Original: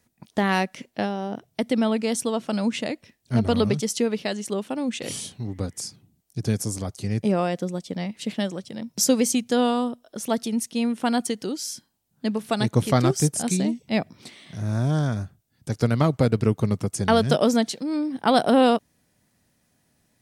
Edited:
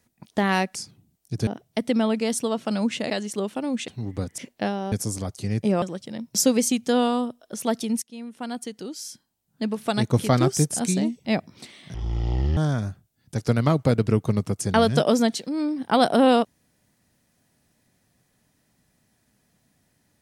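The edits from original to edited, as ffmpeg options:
-filter_complex "[0:a]asplit=11[a][b][c][d][e][f][g][h][i][j][k];[a]atrim=end=0.752[l];[b]atrim=start=5.798:end=6.522[m];[c]atrim=start=1.288:end=2.922[n];[d]atrim=start=4.238:end=5.022[o];[e]atrim=start=5.298:end=5.802[p];[f]atrim=start=0.748:end=1.292[q];[g]atrim=start=6.518:end=7.422[r];[h]atrim=start=8.448:end=10.65,asetpts=PTS-STARTPTS,afade=t=out:st=2.198:d=0.004:c=hsin:silence=0.133352[s];[i]atrim=start=10.65:end=14.574,asetpts=PTS-STARTPTS,afade=t=in:d=1.95:silence=0.133352[t];[j]atrim=start=14.57:end=14.91,asetpts=PTS-STARTPTS,asetrate=23814,aresample=44100[u];[k]atrim=start=14.906[v];[l][m]acrossfade=d=0.004:c1=hsin:c2=hsin[w];[w][n]acrossfade=d=0.004:c1=hsin:c2=hsin[x];[x][o]acrossfade=d=0.004:c1=hsin:c2=hsin[y];[y][p]acrossfade=d=0.004:c1=hsin:c2=hsin[z];[z][q]acrossfade=d=0.004:c1=hsin:c2=hsin[aa];[aa][r]acrossfade=d=0.004:c1=hsin:c2=hsin[ab];[s][t]concat=n=2:v=0:a=1[ac];[ab][ac]acrossfade=d=0.004:c1=hsin:c2=hsin[ad];[ad][u]acrossfade=d=0.004:c1=hsin:c2=hsin[ae];[ae][v]acrossfade=d=0.004:c1=hsin:c2=hsin"

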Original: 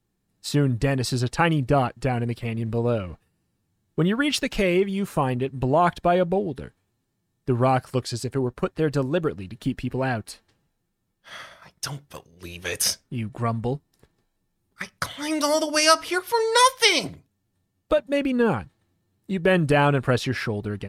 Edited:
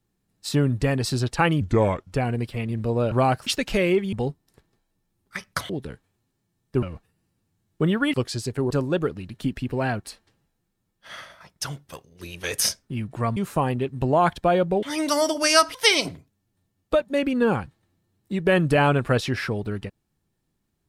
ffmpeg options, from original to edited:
-filter_complex "[0:a]asplit=13[a][b][c][d][e][f][g][h][i][j][k][l][m];[a]atrim=end=1.614[n];[b]atrim=start=1.61:end=2.02,asetpts=PTS-STARTPTS,asetrate=34398,aresample=44100[o];[c]atrim=start=2.016:end=3.002[p];[d]atrim=start=7.558:end=7.912[q];[e]atrim=start=4.308:end=4.972[r];[f]atrim=start=13.578:end=15.152[s];[g]atrim=start=6.428:end=7.562[t];[h]atrim=start=2.998:end=4.312[u];[i]atrim=start=7.908:end=8.482[v];[j]atrim=start=8.918:end=13.582[w];[k]atrim=start=4.968:end=6.432[x];[l]atrim=start=15.148:end=16.072[y];[m]atrim=start=16.728[z];[n][o]acrossfade=d=0.004:c1=hsin:c2=hsin[aa];[aa][p]acrossfade=d=0.004:c1=hsin:c2=hsin[ab];[ab][q]acrossfade=d=0.004:c1=hsin:c2=hsin[ac];[ac][r]acrossfade=d=0.004:c1=hsin:c2=hsin[ad];[ad][s]acrossfade=d=0.004:c1=hsin:c2=hsin[ae];[ae][t]acrossfade=d=0.004:c1=hsin:c2=hsin[af];[af][u]acrossfade=d=0.004:c1=hsin:c2=hsin[ag];[ag][v]acrossfade=d=0.004:c1=hsin:c2=hsin[ah];[ah][w]acrossfade=d=0.004:c1=hsin:c2=hsin[ai];[ai][x]acrossfade=d=0.004:c1=hsin:c2=hsin[aj];[aj][y]acrossfade=d=0.004:c1=hsin:c2=hsin[ak];[ak][z]acrossfade=d=0.004:c1=hsin:c2=hsin"

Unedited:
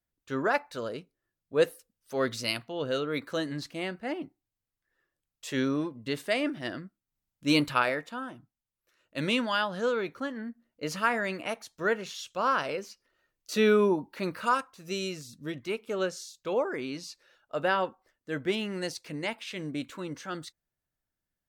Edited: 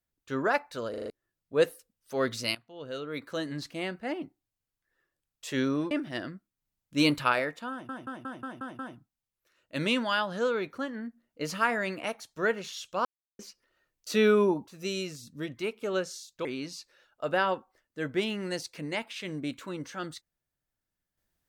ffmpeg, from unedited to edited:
-filter_complex "[0:a]asplit=18[a][b][c][d][e][f][g][h][i][j][k][l][m][n][o][p][q][r];[a]atrim=end=0.942[s];[b]atrim=start=0.898:end=0.942[t];[c]atrim=start=0.898:end=0.942[u];[d]atrim=start=0.898:end=0.942[v];[e]atrim=start=0.898:end=0.942[w];[f]atrim=start=1.098:end=2.55,asetpts=PTS-STARTPTS,afade=t=out:st=1.448:d=0.004:c=hsin:silence=0.11885[x];[g]atrim=start=2.55:end=5.912,asetpts=PTS-STARTPTS,afade=t=in:d=1.13:silence=0.11885[y];[h]atrim=start=6.408:end=8.392[z];[i]atrim=start=8.208:end=8.392[aa];[j]atrim=start=8.208:end=8.392[ab];[k]atrim=start=8.208:end=8.392[ac];[l]atrim=start=8.208:end=8.392[ad];[m]atrim=start=8.208:end=8.392[ae];[n]atrim=start=8.208:end=12.47,asetpts=PTS-STARTPTS,afade=t=out:st=4.258:d=0.004:c=hsin[af];[o]atrim=start=12.47:end=12.81,asetpts=PTS-STARTPTS,volume=0[ag];[p]atrim=start=12.81:end=14.092,asetpts=PTS-STARTPTS,afade=t=in:d=0.004:c=hsin[ah];[q]atrim=start=14.728:end=16.512[ai];[r]atrim=start=16.758[aj];[s][t]acrossfade=d=0.004:c1=hsin:c2=hsin[ak];[ak][u]acrossfade=d=0.004:c1=hsin:c2=hsin[al];[al][v]acrossfade=d=0.004:c1=hsin:c2=hsin[am];[am][w]acrossfade=d=0.004:c1=hsin:c2=hsin[an];[x][y]concat=n=2:v=0:a=1[ao];[an][ao]acrossfade=d=0.004:c1=hsin:c2=hsin[ap];[ap][z]acrossfade=d=0.004:c1=hsin:c2=hsin[aq];[aq][aa]acrossfade=d=0.004:c1=hsin:c2=hsin[ar];[ar][ab]acrossfade=d=0.004:c1=hsin:c2=hsin[as];[as][ac]acrossfade=d=0.004:c1=hsin:c2=hsin[at];[at][ad]acrossfade=d=0.004:c1=hsin:c2=hsin[au];[au][ae]acrossfade=d=0.004:c1=hsin:c2=hsin[av];[af][ag][ah]concat=n=3:v=0:a=1[aw];[av][aw]acrossfade=d=0.004:c1=hsin:c2=hsin[ax];[ax][ai]acrossfade=d=0.004:c1=hsin:c2=hsin[ay];[ay][aj]acrossfade=d=0.004:c1=hsin:c2=hsin"

